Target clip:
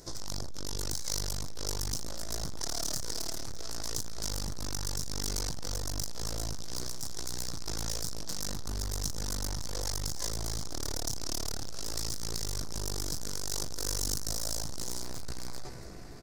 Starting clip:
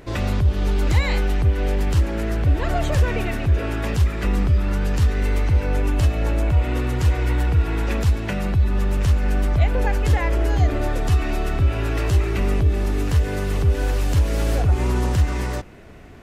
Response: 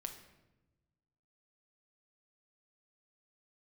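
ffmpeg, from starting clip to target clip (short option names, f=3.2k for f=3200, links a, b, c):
-filter_complex "[0:a]aecho=1:1:295|590|885:0.0841|0.0303|0.0109,dynaudnorm=f=320:g=7:m=6dB,aeval=exprs='0.266*(cos(1*acos(clip(val(0)/0.266,-1,1)))-cos(1*PI/2))+0.0596*(cos(6*acos(clip(val(0)/0.266,-1,1)))-cos(6*PI/2))':c=same[a];[1:a]atrim=start_sample=2205,atrim=end_sample=4410[b];[a][b]afir=irnorm=-1:irlink=0,alimiter=limit=-15.5dB:level=0:latency=1:release=15,asoftclip=type=tanh:threshold=-26dB,asetnsamples=n=441:p=0,asendcmd='15.02 highshelf g 7.5',highshelf=f=3.8k:t=q:w=3:g=13.5,volume=-6dB"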